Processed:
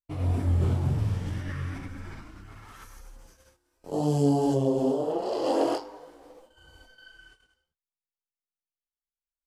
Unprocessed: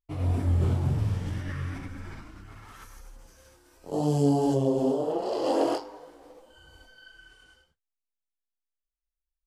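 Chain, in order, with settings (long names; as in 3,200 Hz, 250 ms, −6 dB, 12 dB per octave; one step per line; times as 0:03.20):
noise gate −54 dBFS, range −15 dB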